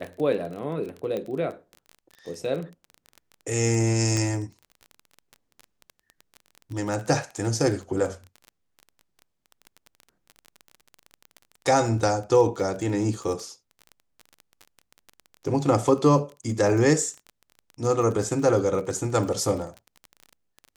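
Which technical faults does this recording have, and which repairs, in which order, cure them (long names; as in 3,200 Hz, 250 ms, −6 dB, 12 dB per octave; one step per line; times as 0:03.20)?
surface crackle 22 per second −32 dBFS
0:01.17: click −19 dBFS
0:04.17: click −15 dBFS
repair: click removal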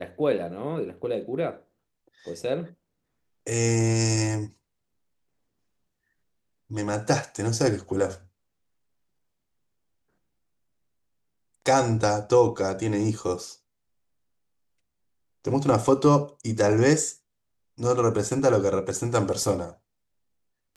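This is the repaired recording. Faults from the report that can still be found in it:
0:04.17: click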